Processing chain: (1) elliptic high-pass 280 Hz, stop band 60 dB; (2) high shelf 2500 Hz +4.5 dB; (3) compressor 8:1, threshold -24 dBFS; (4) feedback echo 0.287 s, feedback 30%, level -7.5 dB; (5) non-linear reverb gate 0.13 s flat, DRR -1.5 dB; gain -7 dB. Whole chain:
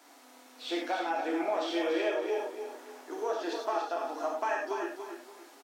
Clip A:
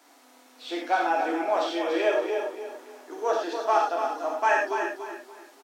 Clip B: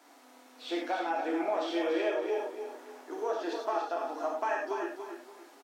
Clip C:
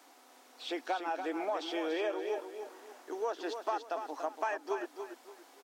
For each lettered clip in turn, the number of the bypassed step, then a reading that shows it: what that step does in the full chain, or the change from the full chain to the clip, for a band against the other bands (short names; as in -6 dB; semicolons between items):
3, mean gain reduction 3.0 dB; 2, 4 kHz band -3.0 dB; 5, echo-to-direct 2.5 dB to -7.0 dB